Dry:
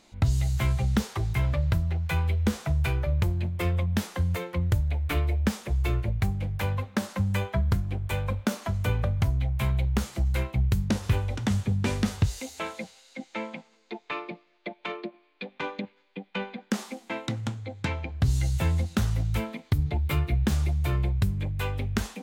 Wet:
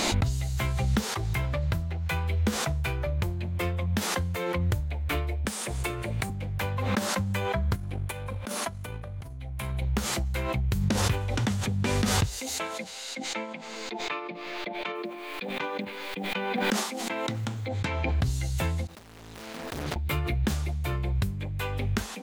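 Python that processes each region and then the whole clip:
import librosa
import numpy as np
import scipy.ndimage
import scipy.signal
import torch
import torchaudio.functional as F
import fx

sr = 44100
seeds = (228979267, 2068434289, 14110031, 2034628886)

y = fx.chain(x, sr, fx.highpass(hz=200.0, slope=6),
    fx.peak_eq(hz=8900.0, db=10.5, octaves=0.41),
    fx.band_squash(depth_pct=100), at=(5.45, 6.3))
y = fx.chain(y, sr, fx.peak_eq(hz=10000.0, db=11.0, octaves=0.25),
    fx.over_compress(threshold_db=-31.0, ratio=-1.0),
    fx.tremolo(hz=3.4, depth=0.66), at=(7.75, 9.82))
y = fx.chain(y, sr, fx.quant_companded(bits=8),
    fx.sustainer(db_per_s=81.0), at=(14.95, 17.68))
y = fx.chain(y, sr, fx.median_filter(points=41),
    fx.overload_stage(gain_db=29.0),
    fx.spectral_comp(ratio=2.0), at=(18.87, 19.96))
y = fx.low_shelf(y, sr, hz=190.0, db=-6.0)
y = fx.pre_swell(y, sr, db_per_s=23.0)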